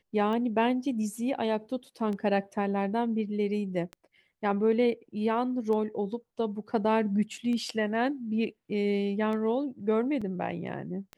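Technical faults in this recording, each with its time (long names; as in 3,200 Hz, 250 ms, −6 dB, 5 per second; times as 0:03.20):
scratch tick 33 1/3 rpm −25 dBFS
0:10.21–0:10.22: drop-out 5.8 ms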